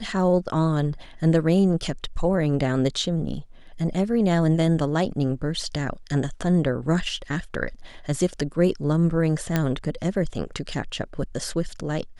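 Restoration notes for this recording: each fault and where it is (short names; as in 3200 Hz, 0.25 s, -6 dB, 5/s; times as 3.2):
9.56 pop -8 dBFS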